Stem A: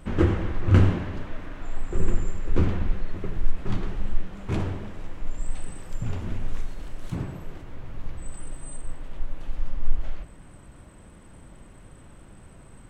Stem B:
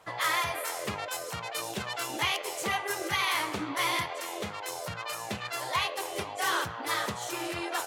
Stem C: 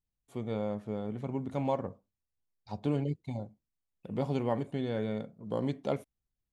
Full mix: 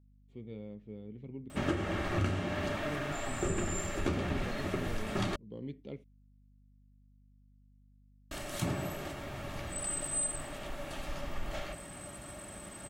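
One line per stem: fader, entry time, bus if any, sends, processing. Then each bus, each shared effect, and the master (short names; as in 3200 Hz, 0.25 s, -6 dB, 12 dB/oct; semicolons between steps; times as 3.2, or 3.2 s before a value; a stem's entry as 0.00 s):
+2.5 dB, 1.50 s, muted 5.36–8.31, bus A, no send, tilt +2.5 dB/oct; AGC gain up to 4 dB; notch comb 500 Hz
off
-9.0 dB, 0.00 s, no bus, no send, LPF 3200 Hz 12 dB/oct; band shelf 980 Hz -15 dB
bus A: 0.0 dB, bell 580 Hz +9.5 dB 0.25 oct; compressor 12:1, threshold -28 dBFS, peak gain reduction 16 dB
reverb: off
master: hum 50 Hz, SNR 25 dB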